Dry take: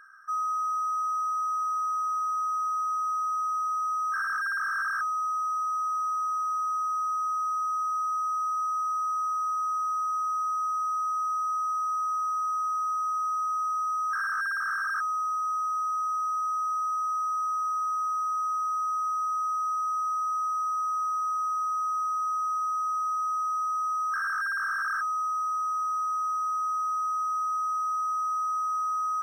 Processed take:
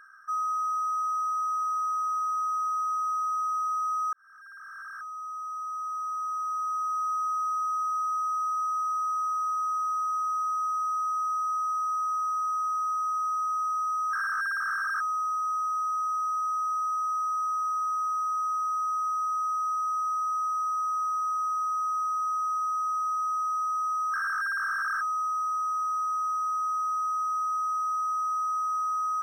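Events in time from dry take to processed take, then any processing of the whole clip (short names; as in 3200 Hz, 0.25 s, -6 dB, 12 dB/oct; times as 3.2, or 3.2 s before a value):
4.13–7.11 fade in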